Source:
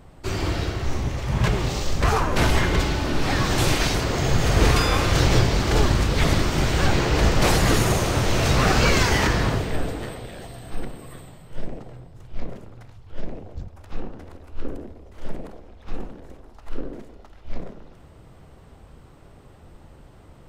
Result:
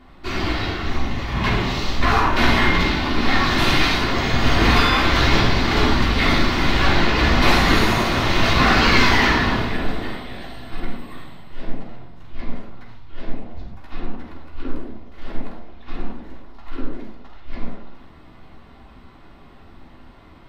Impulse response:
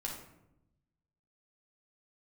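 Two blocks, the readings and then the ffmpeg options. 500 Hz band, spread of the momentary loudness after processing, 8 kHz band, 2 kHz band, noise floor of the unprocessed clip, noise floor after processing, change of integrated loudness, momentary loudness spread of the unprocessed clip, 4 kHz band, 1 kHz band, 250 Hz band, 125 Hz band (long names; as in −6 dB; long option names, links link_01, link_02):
+0.5 dB, 21 LU, −5.0 dB, +7.0 dB, −48 dBFS, −45 dBFS, +3.5 dB, 20 LU, +5.5 dB, +5.5 dB, +4.0 dB, −1.5 dB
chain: -filter_complex "[0:a]equalizer=frequency=125:width_type=o:width=1:gain=-5,equalizer=frequency=250:width_type=o:width=1:gain=9,equalizer=frequency=500:width_type=o:width=1:gain=-4,equalizer=frequency=1000:width_type=o:width=1:gain=6,equalizer=frequency=2000:width_type=o:width=1:gain=7,equalizer=frequency=4000:width_type=o:width=1:gain=9,equalizer=frequency=8000:width_type=o:width=1:gain=-9[link_01];[1:a]atrim=start_sample=2205,afade=type=out:start_time=0.14:duration=0.01,atrim=end_sample=6615,asetrate=31752,aresample=44100[link_02];[link_01][link_02]afir=irnorm=-1:irlink=0,volume=-3.5dB"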